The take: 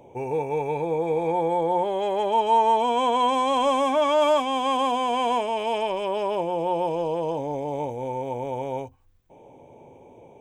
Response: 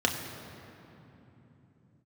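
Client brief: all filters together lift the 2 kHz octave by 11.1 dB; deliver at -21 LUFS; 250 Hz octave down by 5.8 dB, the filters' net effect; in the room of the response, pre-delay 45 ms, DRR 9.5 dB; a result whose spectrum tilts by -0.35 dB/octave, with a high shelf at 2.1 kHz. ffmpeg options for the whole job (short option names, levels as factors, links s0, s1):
-filter_complex "[0:a]equalizer=f=250:t=o:g=-8,equalizer=f=2000:t=o:g=9,highshelf=f=2100:g=8,asplit=2[s0][s1];[1:a]atrim=start_sample=2205,adelay=45[s2];[s1][s2]afir=irnorm=-1:irlink=0,volume=0.0891[s3];[s0][s3]amix=inputs=2:normalize=0"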